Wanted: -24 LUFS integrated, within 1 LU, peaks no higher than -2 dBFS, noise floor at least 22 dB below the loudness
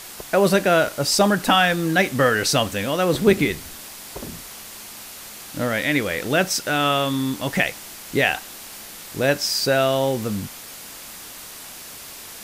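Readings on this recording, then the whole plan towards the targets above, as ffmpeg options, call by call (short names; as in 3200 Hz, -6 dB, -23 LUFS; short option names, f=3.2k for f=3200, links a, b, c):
noise floor -39 dBFS; noise floor target -42 dBFS; loudness -20.0 LUFS; peak -3.5 dBFS; loudness target -24.0 LUFS
-> -af "afftdn=nr=6:nf=-39"
-af "volume=-4dB"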